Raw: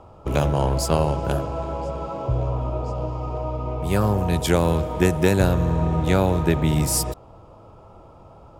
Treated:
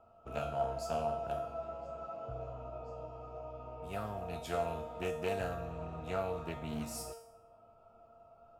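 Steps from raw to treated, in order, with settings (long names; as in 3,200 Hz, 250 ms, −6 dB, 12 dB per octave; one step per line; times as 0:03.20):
parametric band 8,800 Hz −2 dB 0.38 octaves
tuned comb filter 230 Hz, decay 0.62 s, harmonics all, mix 90%
hollow resonant body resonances 680/1,300/2,600 Hz, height 16 dB, ringing for 45 ms
highs frequency-modulated by the lows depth 0.18 ms
level −5.5 dB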